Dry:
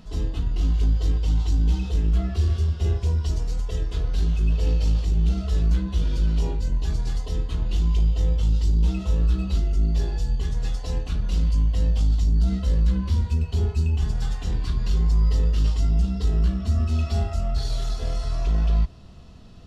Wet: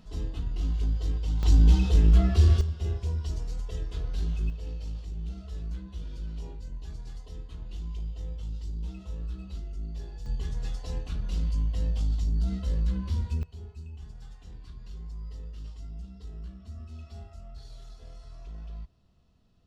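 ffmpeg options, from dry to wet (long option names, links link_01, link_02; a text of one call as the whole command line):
ffmpeg -i in.wav -af "asetnsamples=nb_out_samples=441:pad=0,asendcmd='1.43 volume volume 2.5dB;2.61 volume volume -7.5dB;4.5 volume volume -15dB;10.26 volume volume -7dB;13.43 volume volume -20dB',volume=-7dB" out.wav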